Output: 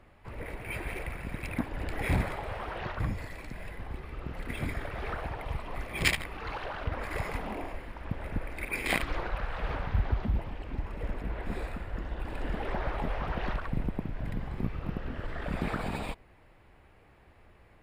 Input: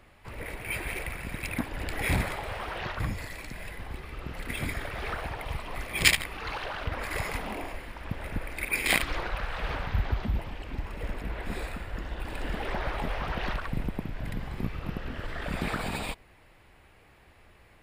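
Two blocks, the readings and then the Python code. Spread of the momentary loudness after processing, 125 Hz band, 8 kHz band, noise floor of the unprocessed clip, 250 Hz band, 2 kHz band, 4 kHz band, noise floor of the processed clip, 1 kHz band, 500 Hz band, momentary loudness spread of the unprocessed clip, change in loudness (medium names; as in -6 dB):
11 LU, 0.0 dB, -9.5 dB, -57 dBFS, 0.0 dB, -4.5 dB, -7.0 dB, -58 dBFS, -1.5 dB, -0.5 dB, 11 LU, -3.0 dB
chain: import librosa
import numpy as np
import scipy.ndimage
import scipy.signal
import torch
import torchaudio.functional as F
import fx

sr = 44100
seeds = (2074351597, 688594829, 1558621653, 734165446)

y = fx.high_shelf(x, sr, hz=2200.0, db=-10.0)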